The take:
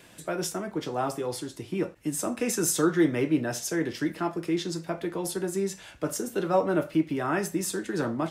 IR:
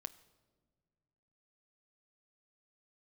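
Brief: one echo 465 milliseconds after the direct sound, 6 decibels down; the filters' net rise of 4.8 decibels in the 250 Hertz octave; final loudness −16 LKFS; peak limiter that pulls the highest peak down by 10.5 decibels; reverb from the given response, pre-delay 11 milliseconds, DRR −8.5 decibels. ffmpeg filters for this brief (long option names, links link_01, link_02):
-filter_complex "[0:a]equalizer=frequency=250:width_type=o:gain=7,alimiter=limit=-19dB:level=0:latency=1,aecho=1:1:465:0.501,asplit=2[link_01][link_02];[1:a]atrim=start_sample=2205,adelay=11[link_03];[link_02][link_03]afir=irnorm=-1:irlink=0,volume=12.5dB[link_04];[link_01][link_04]amix=inputs=2:normalize=0,volume=2.5dB"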